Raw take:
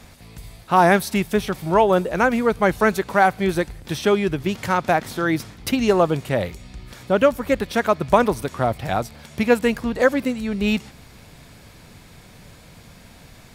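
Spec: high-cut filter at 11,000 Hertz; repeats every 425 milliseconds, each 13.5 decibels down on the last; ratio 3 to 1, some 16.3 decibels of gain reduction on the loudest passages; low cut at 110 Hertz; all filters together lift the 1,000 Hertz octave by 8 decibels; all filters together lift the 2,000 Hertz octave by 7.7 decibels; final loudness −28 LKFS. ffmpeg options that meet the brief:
ffmpeg -i in.wav -af "highpass=110,lowpass=11000,equalizer=frequency=1000:width_type=o:gain=9,equalizer=frequency=2000:width_type=o:gain=6.5,acompressor=threshold=-26dB:ratio=3,aecho=1:1:425|850:0.211|0.0444,volume=-0.5dB" out.wav

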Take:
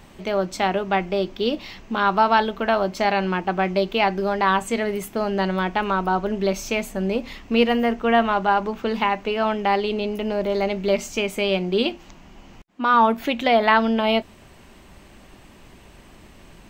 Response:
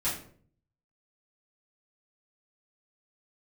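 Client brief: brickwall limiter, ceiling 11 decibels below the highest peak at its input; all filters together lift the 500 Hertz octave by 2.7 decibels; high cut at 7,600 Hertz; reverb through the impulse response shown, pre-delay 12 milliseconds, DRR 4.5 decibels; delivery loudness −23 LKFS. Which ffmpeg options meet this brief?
-filter_complex "[0:a]lowpass=7600,equalizer=frequency=500:width_type=o:gain=3.5,alimiter=limit=-14dB:level=0:latency=1,asplit=2[link_01][link_02];[1:a]atrim=start_sample=2205,adelay=12[link_03];[link_02][link_03]afir=irnorm=-1:irlink=0,volume=-12dB[link_04];[link_01][link_04]amix=inputs=2:normalize=0,volume=-0.5dB"

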